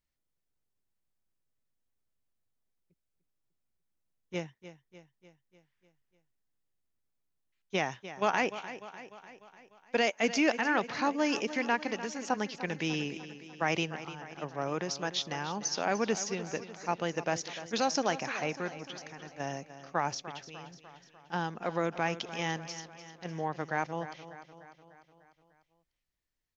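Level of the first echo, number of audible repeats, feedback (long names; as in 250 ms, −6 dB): −13.5 dB, 5, 57%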